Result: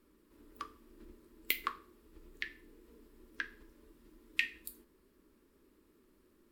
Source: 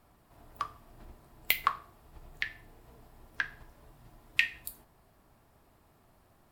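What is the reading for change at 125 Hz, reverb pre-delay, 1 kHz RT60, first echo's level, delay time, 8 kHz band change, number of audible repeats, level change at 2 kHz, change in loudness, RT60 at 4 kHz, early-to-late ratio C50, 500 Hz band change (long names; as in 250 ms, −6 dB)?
below −10 dB, no reverb audible, no reverb audible, no echo audible, no echo audible, −5.0 dB, no echo audible, −6.0 dB, −6.0 dB, no reverb audible, no reverb audible, −2.0 dB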